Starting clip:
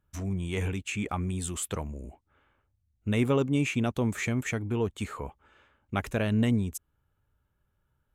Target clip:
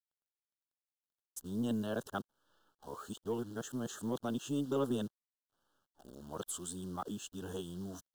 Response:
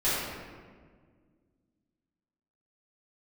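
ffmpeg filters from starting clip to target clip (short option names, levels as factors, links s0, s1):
-af "areverse,highpass=190,acrusher=bits=9:dc=4:mix=0:aa=0.000001,asuperstop=centerf=2200:order=8:qfactor=1.7,aeval=exprs='0.178*(cos(1*acos(clip(val(0)/0.178,-1,1)))-cos(1*PI/2))+0.002*(cos(8*acos(clip(val(0)/0.178,-1,1)))-cos(8*PI/2))':c=same,volume=0.447"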